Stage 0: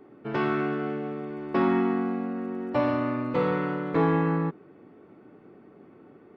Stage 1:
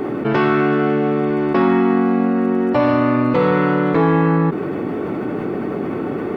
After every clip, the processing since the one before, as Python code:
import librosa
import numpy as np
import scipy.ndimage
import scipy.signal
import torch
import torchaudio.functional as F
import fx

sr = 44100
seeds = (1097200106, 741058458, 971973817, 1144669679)

y = fx.env_flatten(x, sr, amount_pct=70)
y = y * librosa.db_to_amplitude(7.0)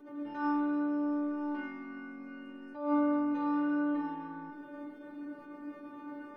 y = fx.stiff_resonator(x, sr, f0_hz=290.0, decay_s=0.77, stiffness=0.002)
y = fx.attack_slew(y, sr, db_per_s=100.0)
y = y * librosa.db_to_amplitude(-3.0)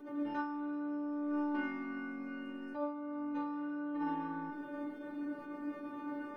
y = fx.over_compress(x, sr, threshold_db=-36.0, ratio=-1.0)
y = y * librosa.db_to_amplitude(-1.0)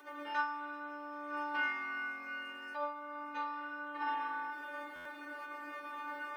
y = scipy.signal.sosfilt(scipy.signal.butter(2, 1200.0, 'highpass', fs=sr, output='sos'), x)
y = fx.buffer_glitch(y, sr, at_s=(4.95,), block=512, repeats=8)
y = y * librosa.db_to_amplitude(10.5)